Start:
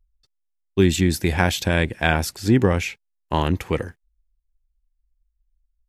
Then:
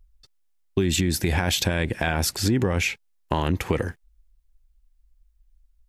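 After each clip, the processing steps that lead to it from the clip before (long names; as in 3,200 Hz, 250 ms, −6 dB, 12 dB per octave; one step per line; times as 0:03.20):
brickwall limiter −14 dBFS, peak gain reduction 11.5 dB
downward compressor 3 to 1, threshold −30 dBFS, peak gain reduction 9 dB
level +9 dB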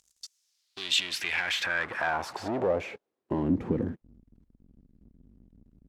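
power curve on the samples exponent 0.5
band-pass filter sweep 6,600 Hz → 240 Hz, 0:00.27–0:03.61
level −1.5 dB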